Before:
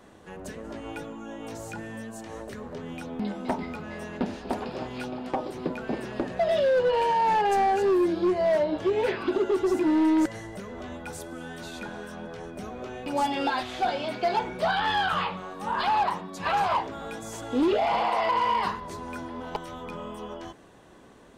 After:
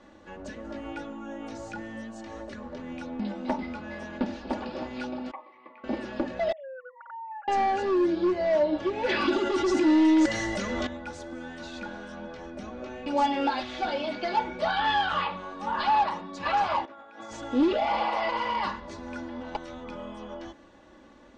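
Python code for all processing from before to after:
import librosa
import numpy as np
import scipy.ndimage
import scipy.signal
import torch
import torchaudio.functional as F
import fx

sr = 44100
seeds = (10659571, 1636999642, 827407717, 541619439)

y = fx.chain(x, sr, fx.double_bandpass(hz=1500.0, octaves=0.89),
    fx.air_absorb(metres=160.0), at=(5.31, 5.84))
y = fx.chain(y, sr, fx.sine_speech(),
    fx.bandpass_q(hz=1400.0, q=6.5), at=(6.52, 7.48))
y = fx.chain(y, sr, fx.median_filter(points=3),
    fx.high_shelf(hz=3100.0, db=11.5),
    fx.env_flatten(amount_pct=50), at=(9.09, 10.87))
y = fx.chain(y, sr, fx.bandpass_q(hz=1200.0, q=0.59),
    fx.over_compress(threshold_db=-44.0, ratio=-0.5), at=(16.85, 17.31))
y = scipy.signal.sosfilt(scipy.signal.butter(4, 6300.0, 'lowpass', fs=sr, output='sos'), y)
y = y + 0.66 * np.pad(y, (int(3.5 * sr / 1000.0), 0))[:len(y)]
y = F.gain(torch.from_numpy(y), -2.5).numpy()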